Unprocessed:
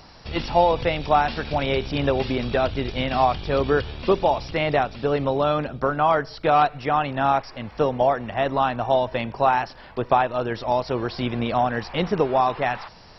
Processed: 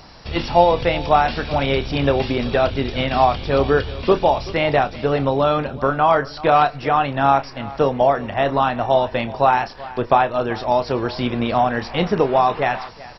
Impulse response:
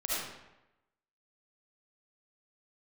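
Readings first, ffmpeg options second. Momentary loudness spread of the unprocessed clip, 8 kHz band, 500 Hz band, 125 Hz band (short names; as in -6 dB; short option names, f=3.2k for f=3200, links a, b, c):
6 LU, n/a, +4.0 dB, +4.0 dB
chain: -filter_complex "[0:a]asplit=2[a][b];[b]adelay=29,volume=-12dB[c];[a][c]amix=inputs=2:normalize=0,asplit=2[d][e];[e]aecho=0:1:381:0.119[f];[d][f]amix=inputs=2:normalize=0,volume=3.5dB"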